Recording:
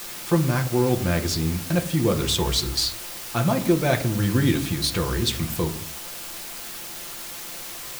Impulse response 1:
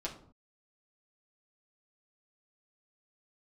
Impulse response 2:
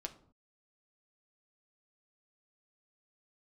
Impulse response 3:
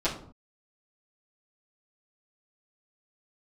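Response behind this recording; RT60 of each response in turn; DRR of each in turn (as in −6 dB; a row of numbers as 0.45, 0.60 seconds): 2; 0.55, 0.55, 0.55 seconds; −4.0, 4.0, −11.5 decibels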